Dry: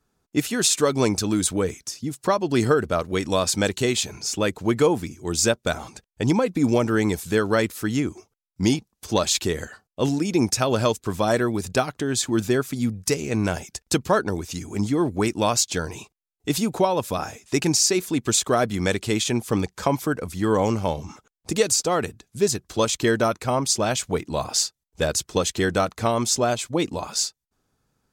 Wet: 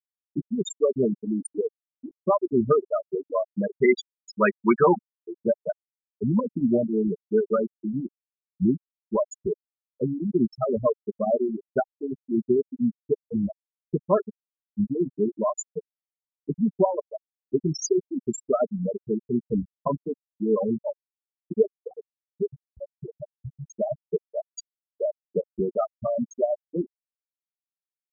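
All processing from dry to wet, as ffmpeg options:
ffmpeg -i in.wav -filter_complex "[0:a]asettb=1/sr,asplit=3[link_01][link_02][link_03];[link_01]atrim=end=3.824[link_04];[link_02]atrim=start=3.82:end=5.03,asetpts=PTS-STARTPTS,afade=type=in:duration=0.004:curve=qsin,afade=type=out:start_time=1.206:duration=0.004:curve=qsin,equalizer=frequency=1400:width=0.68:gain=10.5,aecho=1:1:5.3:0.5,atrim=end_sample=53361[link_05];[link_03]atrim=start=5.026[link_06];[link_04][link_05]acrossfade=duration=0.004:curve1=hsin:curve2=qsin[link_07];[link_07][link_06]acrossfade=duration=0.004:curve1=qsin:curve2=hsin,asettb=1/sr,asplit=3[link_08][link_09][link_10];[link_08]atrim=end=21.674[link_11];[link_09]atrim=start=21.67:end=23.64,asetpts=PTS-STARTPTS,afade=type=in:duration=0.004:curve=qsin,afade=type=out:start_time=1.966:duration=0.004:curve=qsin,asubboost=boost=4:cutoff=170,acompressor=threshold=-21dB:ratio=10:attack=3.2:release=140:knee=1:detection=peak[link_12];[link_10]atrim=start=23.636[link_13];[link_11][link_12]acrossfade=duration=0.004:curve1=hsin:curve2=qsin[link_14];[link_14][link_13]acrossfade=duration=0.004:curve1=qsin:curve2=hsin,afftfilt=real='re*gte(hypot(re,im),0.447)':imag='im*gte(hypot(re,im),0.447)':win_size=1024:overlap=0.75,aecho=1:1:4.9:0.65,volume=-2dB" out.wav

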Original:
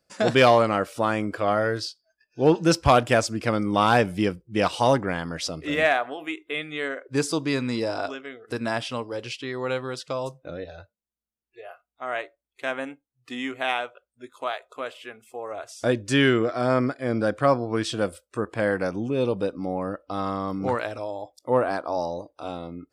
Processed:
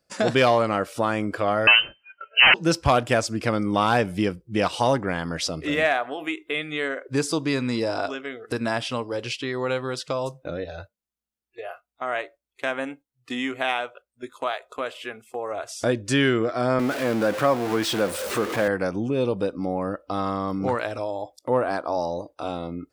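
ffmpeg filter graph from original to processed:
ffmpeg -i in.wav -filter_complex "[0:a]asettb=1/sr,asplit=3[link_01][link_02][link_03];[link_01]atrim=end=1.674[link_04];[link_02]atrim=start=1.67:end=2.54,asetpts=PTS-STARTPTS,afade=type=in:duration=0.004:curve=qsin,afade=type=out:start_time=0.866:duration=0.004:curve=qsin,aeval=exprs='0.473*sin(PI/2*6.31*val(0)/0.473)':channel_layout=same,lowpass=frequency=2600:width_type=q:width=0.5098,lowpass=frequency=2600:width_type=q:width=0.6013,lowpass=frequency=2600:width_type=q:width=0.9,lowpass=frequency=2600:width_type=q:width=2.563,afreqshift=-3100[link_05];[link_03]atrim=start=2.536[link_06];[link_04][link_05]acrossfade=duration=0.004:curve1=hsin:curve2=qsin[link_07];[link_07][link_06]acrossfade=duration=0.004:curve1=qsin:curve2=hsin,asettb=1/sr,asplit=3[link_08][link_09][link_10];[link_08]atrim=end=16.794[link_11];[link_09]atrim=start=16.79:end=18.68,asetpts=PTS-STARTPTS,afade=type=in:duration=0.004:curve=qsin,afade=type=out:start_time=1.886:duration=0.004:curve=qsin,aeval=exprs='val(0)+0.5*0.0562*sgn(val(0))':channel_layout=same,highpass=130,bass=frequency=250:gain=-3,treble=frequency=4000:gain=-4[link_12];[link_10]atrim=start=18.676[link_13];[link_11][link_12]acrossfade=duration=0.004:curve1=hsin:curve2=qsin[link_14];[link_14][link_13]acrossfade=duration=0.004:curve1=qsin:curve2=hsin,agate=range=-7dB:threshold=-48dB:ratio=16:detection=peak,acompressor=threshold=-40dB:ratio=1.5,volume=7.5dB" out.wav

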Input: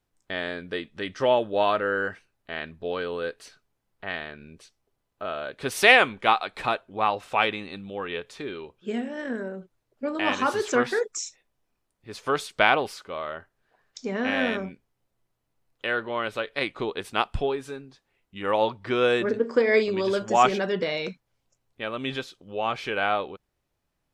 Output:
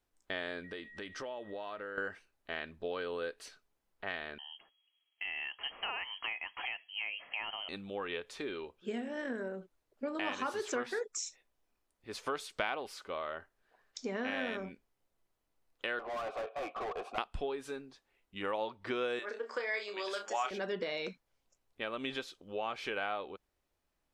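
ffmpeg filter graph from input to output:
ffmpeg -i in.wav -filter_complex "[0:a]asettb=1/sr,asplit=3[link_01][link_02][link_03];[link_01]atrim=end=0.644[link_04];[link_02]atrim=start=0.64:end=1.98,asetpts=PTS-STARTPTS,afade=type=in:duration=0.004:curve=qsin,afade=type=out:start_time=1.336:duration=0.004:curve=qsin,aeval=exprs='val(0)+0.00398*sin(2*PI*1900*n/s)':channel_layout=same,acompressor=threshold=-36dB:ratio=6:attack=3.2:release=140:knee=1:detection=peak[link_05];[link_03]atrim=start=1.976[link_06];[link_04][link_05]acrossfade=duration=0.004:curve1=hsin:curve2=qsin[link_07];[link_07][link_06]acrossfade=duration=0.004:curve1=qsin:curve2=hsin,asettb=1/sr,asplit=3[link_08][link_09][link_10];[link_08]atrim=end=4.384[link_11];[link_09]atrim=start=4.38:end=7.69,asetpts=PTS-STARTPTS,afade=type=in:duration=0.004:curve=qsin,afade=type=out:start_time=3.306:duration=0.004:curve=qsin,bandreject=frequency=1800:width=10,acompressor=threshold=-31dB:ratio=3:attack=3.2:release=140:knee=1:detection=peak,lowpass=frequency=2800:width_type=q:width=0.5098,lowpass=frequency=2800:width_type=q:width=0.6013,lowpass=frequency=2800:width_type=q:width=0.9,lowpass=frequency=2800:width_type=q:width=2.563,afreqshift=-3300[link_12];[link_10]atrim=start=7.686[link_13];[link_11][link_12]acrossfade=duration=0.004:curve1=hsin:curve2=qsin[link_14];[link_14][link_13]acrossfade=duration=0.004:curve1=qsin:curve2=hsin,asettb=1/sr,asplit=3[link_15][link_16][link_17];[link_15]atrim=end=15.994[link_18];[link_16]atrim=start=15.99:end=17.18,asetpts=PTS-STARTPTS,afade=type=in:duration=0.004:curve=qsin,afade=type=out:start_time=1.186:duration=0.004:curve=qsin,asplit=3[link_19][link_20][link_21];[link_19]bandpass=frequency=730:width_type=q:width=8,volume=0dB[link_22];[link_20]bandpass=frequency=1090:width_type=q:width=8,volume=-6dB[link_23];[link_21]bandpass=frequency=2440:width_type=q:width=8,volume=-9dB[link_24];[link_22][link_23][link_24]amix=inputs=3:normalize=0,equalizer=frequency=2600:width_type=o:width=1.6:gain=-12.5,asplit=2[link_25][link_26];[link_26]highpass=frequency=720:poles=1,volume=35dB,asoftclip=type=tanh:threshold=-26dB[link_27];[link_25][link_27]amix=inputs=2:normalize=0,lowpass=frequency=1700:poles=1,volume=-6dB[link_28];[link_17]atrim=start=17.176[link_29];[link_18][link_28]acrossfade=duration=0.004:curve1=hsin:curve2=qsin[link_30];[link_30][link_29]acrossfade=duration=0.004:curve1=qsin:curve2=hsin,asettb=1/sr,asplit=3[link_31][link_32][link_33];[link_31]atrim=end=19.194[link_34];[link_32]atrim=start=19.19:end=20.51,asetpts=PTS-STARTPTS,afade=type=in:duration=0.004:curve=qsin,afade=type=out:start_time=1.316:duration=0.004:curve=qsin,highpass=760,asplit=2[link_35][link_36];[link_36]adelay=29,volume=-8dB[link_37];[link_35][link_37]amix=inputs=2:normalize=0,atrim=end_sample=58212[link_38];[link_33]atrim=start=20.506[link_39];[link_34][link_38]acrossfade=duration=0.004:curve1=hsin:curve2=qsin[link_40];[link_40][link_39]acrossfade=duration=0.004:curve1=qsin:curve2=hsin,equalizer=frequency=130:width_type=o:width=1:gain=-9.5,acompressor=threshold=-32dB:ratio=3,volume=-3dB" out.wav

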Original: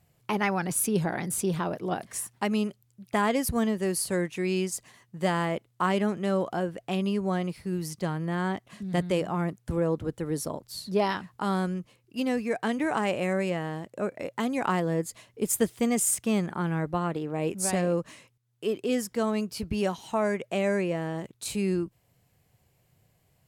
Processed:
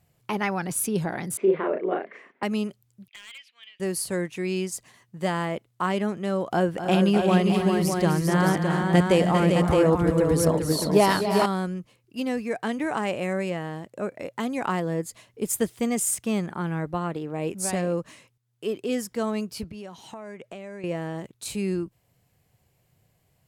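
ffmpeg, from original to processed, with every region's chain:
ffmpeg -i in.wav -filter_complex "[0:a]asettb=1/sr,asplit=3[link_01][link_02][link_03];[link_01]atrim=end=1.374[link_04];[link_02]atrim=start=1.37:end=2.43,asetpts=PTS-STARTPTS,afade=type=in:duration=0.004:curve=qsin,afade=type=out:start_time=1.056:duration=0.004:curve=qsin,highpass=frequency=240:width=0.5412,highpass=frequency=240:width=1.3066,equalizer=frequency=400:width_type=q:width=4:gain=10,equalizer=frequency=560:width_type=q:width=4:gain=5,equalizer=frequency=830:width_type=q:width=4:gain=-4,equalizer=frequency=2100:width_type=q:width=4:gain=7,lowpass=frequency=2500:width=0.5412,lowpass=frequency=2500:width=1.3066,asplit=2[link_05][link_06];[link_06]adelay=37,volume=-3dB[link_07];[link_05][link_07]amix=inputs=2:normalize=0,atrim=end_sample=46746[link_08];[link_03]atrim=start=2.426[link_09];[link_04][link_08]acrossfade=duration=0.004:curve1=hsin:curve2=qsin[link_10];[link_10][link_09]acrossfade=duration=0.004:curve1=qsin:curve2=hsin,asettb=1/sr,asplit=3[link_11][link_12][link_13];[link_11]atrim=end=3.084[link_14];[link_12]atrim=start=3.08:end=3.8,asetpts=PTS-STARTPTS,afade=type=in:duration=0.004:curve=qsin,afade=type=out:start_time=0.716:duration=0.004:curve=qsin,asuperpass=centerf=2800:order=4:qfactor=2.4,aeval=exprs='0.0168*(abs(mod(val(0)/0.0168+3,4)-2)-1)':channel_layout=same[link_15];[link_13]atrim=start=3.796[link_16];[link_14][link_15]acrossfade=duration=0.004:curve1=hsin:curve2=qsin[link_17];[link_17][link_16]acrossfade=duration=0.004:curve1=qsin:curve2=hsin,asettb=1/sr,asplit=3[link_18][link_19][link_20];[link_18]atrim=end=6.514[link_21];[link_19]atrim=start=6.51:end=11.46,asetpts=PTS-STARTPTS,afade=type=in:duration=0.004:curve=qsin,afade=type=out:start_time=4.946:duration=0.004:curve=qsin,acontrast=71,aecho=1:1:251|313|397|615:0.335|0.282|0.562|0.531,atrim=end_sample=218295[link_22];[link_20]atrim=start=11.456[link_23];[link_21][link_22]acrossfade=duration=0.004:curve1=hsin:curve2=qsin[link_24];[link_24][link_23]acrossfade=duration=0.004:curve1=qsin:curve2=hsin,asettb=1/sr,asplit=3[link_25][link_26][link_27];[link_25]atrim=end=19.644[link_28];[link_26]atrim=start=19.64:end=20.84,asetpts=PTS-STARTPTS,afade=type=in:duration=0.004:curve=qsin,afade=type=out:start_time=1.196:duration=0.004:curve=qsin,highpass=85,highshelf=frequency=10000:gain=-6.5,acompressor=threshold=-36dB:ratio=6:attack=3.2:release=140:knee=1:detection=peak[link_29];[link_27]atrim=start=20.836[link_30];[link_28][link_29]acrossfade=duration=0.004:curve1=hsin:curve2=qsin[link_31];[link_31][link_30]acrossfade=duration=0.004:curve1=qsin:curve2=hsin" out.wav

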